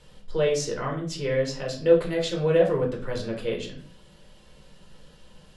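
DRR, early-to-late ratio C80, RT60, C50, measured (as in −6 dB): −0.5 dB, 13.5 dB, 0.45 s, 9.0 dB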